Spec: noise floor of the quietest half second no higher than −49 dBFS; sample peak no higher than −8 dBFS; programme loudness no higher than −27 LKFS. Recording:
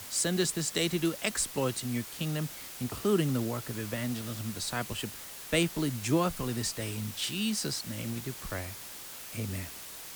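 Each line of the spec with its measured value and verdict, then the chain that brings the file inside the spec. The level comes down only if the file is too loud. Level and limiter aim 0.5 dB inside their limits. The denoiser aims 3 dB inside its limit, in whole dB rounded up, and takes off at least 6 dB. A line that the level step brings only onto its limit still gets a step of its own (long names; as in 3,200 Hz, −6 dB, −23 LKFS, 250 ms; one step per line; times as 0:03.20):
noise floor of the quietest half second −44 dBFS: out of spec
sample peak −12.5 dBFS: in spec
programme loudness −32.0 LKFS: in spec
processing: broadband denoise 8 dB, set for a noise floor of −44 dBFS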